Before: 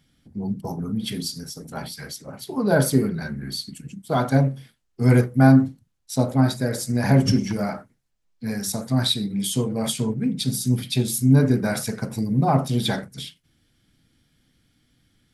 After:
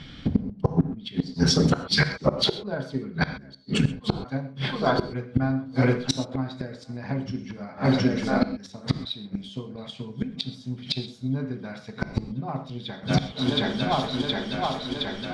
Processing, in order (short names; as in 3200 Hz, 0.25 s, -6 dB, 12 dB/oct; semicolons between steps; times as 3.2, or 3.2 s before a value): bell 1100 Hz +4.5 dB 0.29 oct; thinning echo 0.718 s, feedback 77%, high-pass 160 Hz, level -24 dB; transient shaper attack +6 dB, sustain +2 dB; flipped gate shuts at -18 dBFS, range -35 dB; ladder low-pass 4700 Hz, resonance 30%; flipped gate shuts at -31 dBFS, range -35 dB; non-linear reverb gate 0.15 s flat, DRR 11 dB; maximiser +35.5 dB; gain -8.5 dB